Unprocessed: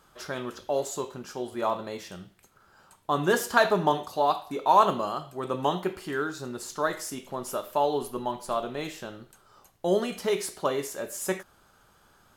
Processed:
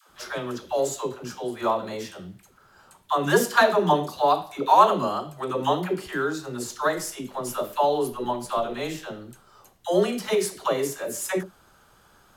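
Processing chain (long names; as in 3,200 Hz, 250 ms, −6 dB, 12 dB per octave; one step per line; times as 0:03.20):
all-pass dispersion lows, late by 99 ms, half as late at 460 Hz
level +3.5 dB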